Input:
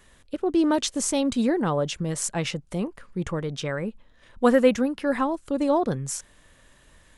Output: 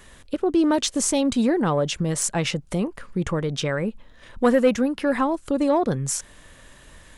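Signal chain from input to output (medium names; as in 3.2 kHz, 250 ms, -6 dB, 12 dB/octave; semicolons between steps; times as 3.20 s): in parallel at +3 dB: compression, threshold -32 dBFS, peak gain reduction 18 dB; on the sum: saturation -8 dBFS, distortion -22 dB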